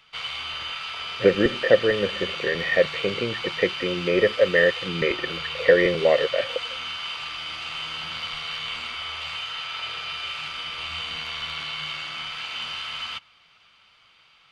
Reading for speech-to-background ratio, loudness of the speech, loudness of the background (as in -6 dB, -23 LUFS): 7.5 dB, -22.5 LUFS, -30.0 LUFS